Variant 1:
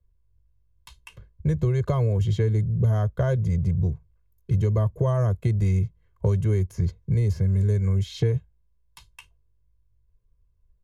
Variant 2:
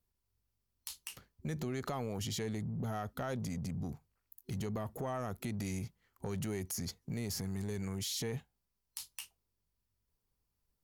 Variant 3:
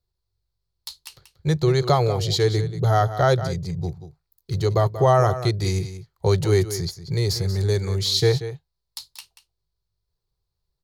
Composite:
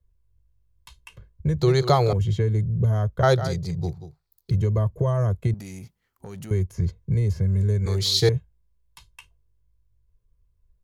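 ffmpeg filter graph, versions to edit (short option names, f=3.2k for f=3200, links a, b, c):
-filter_complex "[2:a]asplit=3[a][b][c];[0:a]asplit=5[d][e][f][g][h];[d]atrim=end=1.602[i];[a]atrim=start=1.598:end=2.132[j];[e]atrim=start=2.128:end=3.232[k];[b]atrim=start=3.228:end=4.512[l];[f]atrim=start=4.508:end=5.542[m];[1:a]atrim=start=5.538:end=6.512[n];[g]atrim=start=6.508:end=7.862[o];[c]atrim=start=7.858:end=8.292[p];[h]atrim=start=8.288[q];[i][j]acrossfade=d=0.004:c1=hsin:c2=hsin[r];[r][k]acrossfade=d=0.004:c1=hsin:c2=hsin[s];[s][l]acrossfade=d=0.004:c1=hsin:c2=hsin[t];[t][m]acrossfade=d=0.004:c1=hsin:c2=hsin[u];[u][n]acrossfade=d=0.004:c1=hsin:c2=hsin[v];[v][o]acrossfade=d=0.004:c1=hsin:c2=hsin[w];[w][p]acrossfade=d=0.004:c1=hsin:c2=hsin[x];[x][q]acrossfade=d=0.004:c1=hsin:c2=hsin"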